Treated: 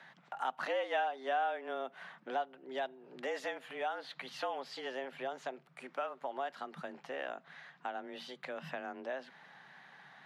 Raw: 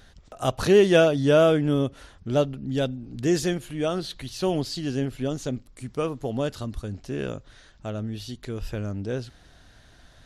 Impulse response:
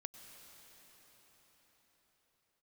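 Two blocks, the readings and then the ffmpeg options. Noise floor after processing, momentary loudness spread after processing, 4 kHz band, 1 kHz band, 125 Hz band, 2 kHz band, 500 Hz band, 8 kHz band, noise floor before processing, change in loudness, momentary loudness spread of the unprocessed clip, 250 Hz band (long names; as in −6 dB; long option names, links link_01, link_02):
−65 dBFS, 15 LU, −13.0 dB, −2.5 dB, −33.5 dB, −7.0 dB, −16.5 dB, −21.5 dB, −54 dBFS, −14.5 dB, 17 LU, −24.5 dB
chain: -filter_complex "[0:a]acrossover=split=550 2600:gain=0.0794 1 0.0708[link_01][link_02][link_03];[link_01][link_02][link_03]amix=inputs=3:normalize=0,acompressor=threshold=-43dB:ratio=2.5,afreqshift=130,volume=4.5dB"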